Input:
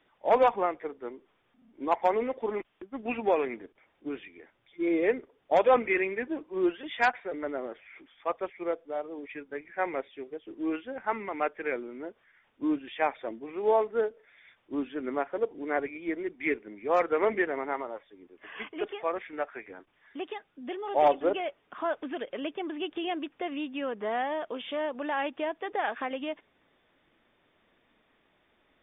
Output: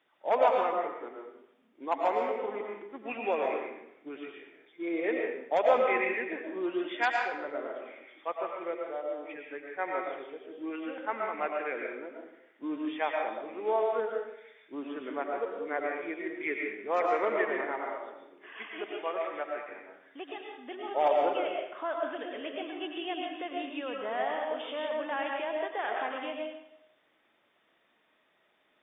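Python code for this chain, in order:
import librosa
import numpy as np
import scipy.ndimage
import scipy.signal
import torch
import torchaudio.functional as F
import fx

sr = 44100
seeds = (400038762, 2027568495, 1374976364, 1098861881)

y = fx.highpass(x, sr, hz=410.0, slope=6)
y = fx.rev_freeverb(y, sr, rt60_s=0.82, hf_ratio=0.9, predelay_ms=70, drr_db=0.0)
y = y * 10.0 ** (-3.0 / 20.0)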